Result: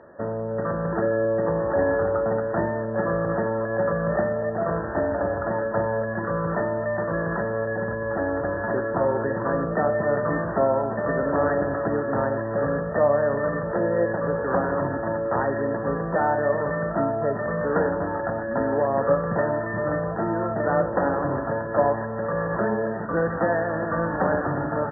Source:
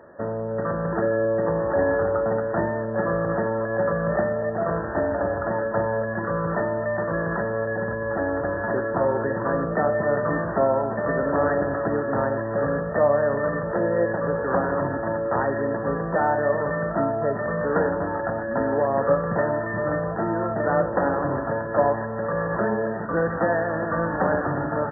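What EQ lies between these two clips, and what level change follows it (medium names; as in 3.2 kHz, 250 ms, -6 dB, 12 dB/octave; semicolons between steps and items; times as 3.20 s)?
distance through air 140 m; 0.0 dB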